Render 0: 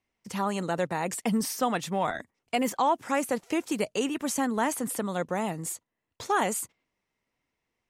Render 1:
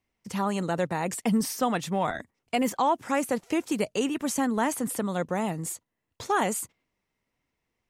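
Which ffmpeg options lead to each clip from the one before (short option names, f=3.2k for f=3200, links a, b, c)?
-af "lowshelf=f=220:g=5"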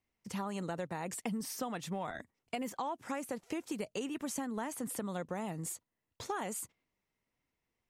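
-af "acompressor=threshold=-29dB:ratio=6,volume=-5.5dB"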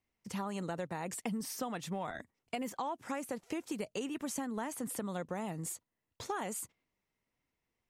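-af anull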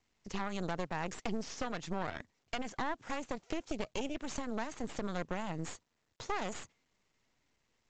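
-af "aeval=exprs='0.075*(cos(1*acos(clip(val(0)/0.075,-1,1)))-cos(1*PI/2))+0.0211*(cos(6*acos(clip(val(0)/0.075,-1,1)))-cos(6*PI/2))':c=same,volume=-2dB" -ar 16000 -c:a pcm_mulaw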